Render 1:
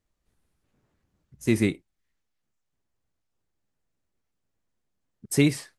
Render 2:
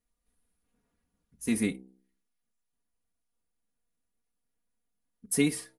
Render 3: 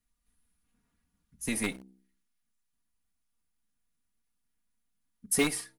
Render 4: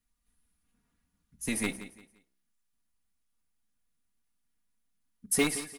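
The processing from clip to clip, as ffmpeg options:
-af "equalizer=f=10k:t=o:w=0.23:g=14.5,aecho=1:1:4.2:0.75,bandreject=f=64.44:t=h:w=4,bandreject=f=128.88:t=h:w=4,bandreject=f=193.32:t=h:w=4,bandreject=f=257.76:t=h:w=4,bandreject=f=322.2:t=h:w=4,bandreject=f=386.64:t=h:w=4,bandreject=f=451.08:t=h:w=4,bandreject=f=515.52:t=h:w=4,bandreject=f=579.96:t=h:w=4,bandreject=f=644.4:t=h:w=4,bandreject=f=708.84:t=h:w=4,bandreject=f=773.28:t=h:w=4,bandreject=f=837.72:t=h:w=4,bandreject=f=902.16:t=h:w=4,volume=-7dB"
-filter_complex "[0:a]acrossover=split=350|730|4400[a][b][c][d];[a]acompressor=threshold=-37dB:ratio=6[e];[b]acrusher=bits=6:dc=4:mix=0:aa=0.000001[f];[e][f][c][d]amix=inputs=4:normalize=0,volume=2.5dB"
-af "aecho=1:1:173|346|519:0.188|0.0565|0.017"

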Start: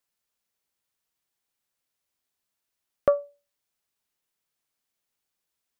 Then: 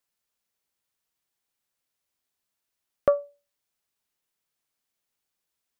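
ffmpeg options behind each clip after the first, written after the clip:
-af anull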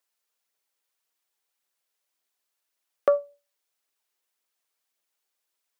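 -af "highpass=370,aphaser=in_gain=1:out_gain=1:delay=2.6:decay=0.27:speed=1.8:type=triangular,volume=1.5dB"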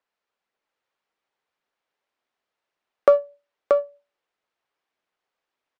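-af "aecho=1:1:631:0.631,adynamicsmooth=sensitivity=5:basefreq=2.6k,volume=6dB"

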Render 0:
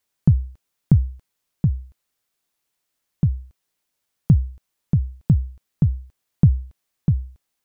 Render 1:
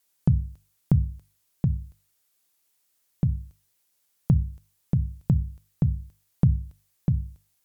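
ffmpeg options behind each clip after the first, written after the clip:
-filter_complex "[0:a]aemphasis=mode=production:type=cd,bandreject=f=50:t=h:w=6,bandreject=f=100:t=h:w=6,bandreject=f=150:t=h:w=6,bandreject=f=200:t=h:w=6,bandreject=f=250:t=h:w=6,asplit=2[a][b];[b]acompressor=threshold=-23dB:ratio=6,volume=-1dB[c];[a][c]amix=inputs=2:normalize=0,volume=-6dB"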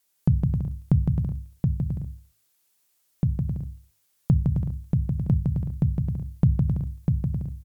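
-af "aecho=1:1:160|264|331.6|375.5|404.1:0.631|0.398|0.251|0.158|0.1"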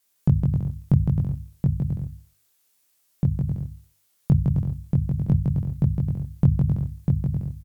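-filter_complex "[0:a]asplit=2[a][b];[b]adelay=21,volume=-2dB[c];[a][c]amix=inputs=2:normalize=0"

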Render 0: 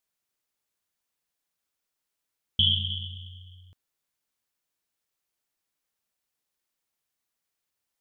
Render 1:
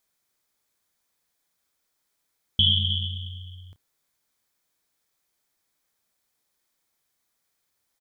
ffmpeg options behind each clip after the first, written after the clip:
-filter_complex "[0:a]bandreject=f=2.8k:w=8.3,asplit=2[a][b];[b]alimiter=limit=-23dB:level=0:latency=1:release=61,volume=2.5dB[c];[a][c]amix=inputs=2:normalize=0,asplit=2[d][e];[e]adelay=30,volume=-14dB[f];[d][f]amix=inputs=2:normalize=0"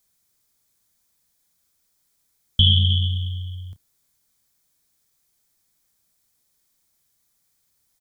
-filter_complex "[0:a]bass=f=250:g=10,treble=f=4k:g=8,acrossover=split=220|940[a][b][c];[b]asoftclip=type=tanh:threshold=-40dB[d];[a][d][c]amix=inputs=3:normalize=0"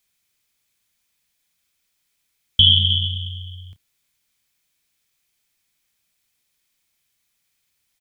-af "equalizer=f=2.6k:t=o:w=1.1:g=12.5,volume=-4dB"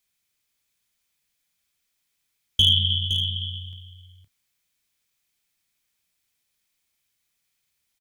-af "asoftclip=type=hard:threshold=-5.5dB,aecho=1:1:514:0.398,volume=-4.5dB"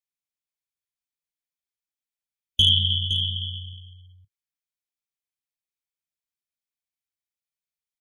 -af "afftdn=nr=20:nf=-43"

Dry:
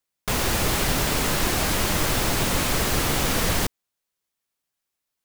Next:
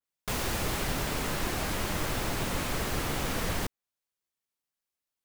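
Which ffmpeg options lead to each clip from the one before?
-af "adynamicequalizer=threshold=0.00794:dfrequency=3000:dqfactor=0.7:tfrequency=3000:tqfactor=0.7:attack=5:release=100:ratio=0.375:range=2:mode=cutabove:tftype=highshelf,volume=-7.5dB"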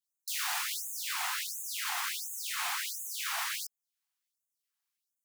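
-filter_complex "[0:a]asplit=2[a][b];[b]alimiter=level_in=0.5dB:limit=-24dB:level=0:latency=1:release=24,volume=-0.5dB,volume=-0.5dB[c];[a][c]amix=inputs=2:normalize=0,afftfilt=real='re*gte(b*sr/1024,660*pow(6400/660,0.5+0.5*sin(2*PI*1.4*pts/sr)))':imag='im*gte(b*sr/1024,660*pow(6400/660,0.5+0.5*sin(2*PI*1.4*pts/sr)))':win_size=1024:overlap=0.75,volume=-3dB"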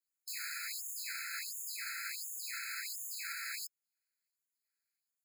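-af "alimiter=level_in=5dB:limit=-24dB:level=0:latency=1:release=27,volume=-5dB,afftfilt=real='re*eq(mod(floor(b*sr/1024/1300),2),1)':imag='im*eq(mod(floor(b*sr/1024/1300),2),1)':win_size=1024:overlap=0.75"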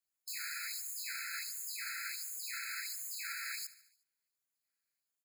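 -af "aecho=1:1:73|146|219|292|365:0.141|0.0791|0.0443|0.0248|0.0139"

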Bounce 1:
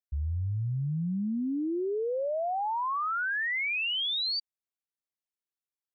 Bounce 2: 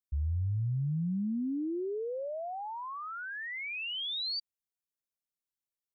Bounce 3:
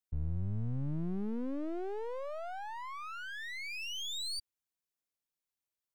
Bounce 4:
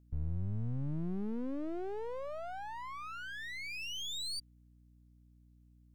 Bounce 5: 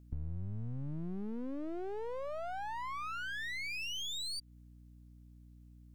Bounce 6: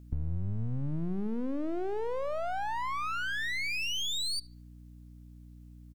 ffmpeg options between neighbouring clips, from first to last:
-af "equalizer=f=1.3k:w=0.39:g=-10"
-af "aeval=exprs='clip(val(0),-1,0.00335)':c=same"
-af "aeval=exprs='val(0)+0.001*(sin(2*PI*60*n/s)+sin(2*PI*2*60*n/s)/2+sin(2*PI*3*60*n/s)/3+sin(2*PI*4*60*n/s)/4+sin(2*PI*5*60*n/s)/5)':c=same,volume=-1dB"
-af "acompressor=threshold=-42dB:ratio=6,volume=6dB"
-filter_complex "[0:a]asplit=2[a][b];[b]adelay=73,lowpass=f=2.8k:p=1,volume=-18.5dB,asplit=2[c][d];[d]adelay=73,lowpass=f=2.8k:p=1,volume=0.49,asplit=2[e][f];[f]adelay=73,lowpass=f=2.8k:p=1,volume=0.49,asplit=2[g][h];[h]adelay=73,lowpass=f=2.8k:p=1,volume=0.49[i];[a][c][e][g][i]amix=inputs=5:normalize=0,volume=6.5dB"

